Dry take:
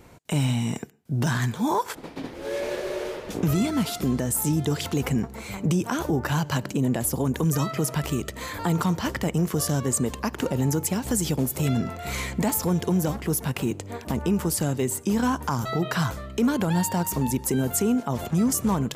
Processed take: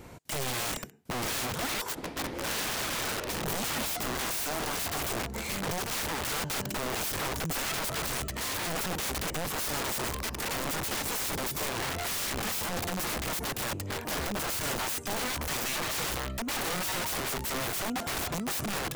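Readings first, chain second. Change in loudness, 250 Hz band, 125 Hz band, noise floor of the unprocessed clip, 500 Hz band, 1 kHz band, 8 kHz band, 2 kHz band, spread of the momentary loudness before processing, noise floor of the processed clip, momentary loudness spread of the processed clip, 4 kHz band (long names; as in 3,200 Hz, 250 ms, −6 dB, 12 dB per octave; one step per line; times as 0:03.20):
−5.5 dB, −14.0 dB, −14.5 dB, −41 dBFS, −7.5 dB, −3.5 dB, −2.5 dB, +1.0 dB, 7 LU, −39 dBFS, 3 LU, +3.0 dB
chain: compressor whose output falls as the input rises −25 dBFS, ratio −0.5
wrap-around overflow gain 27.5 dB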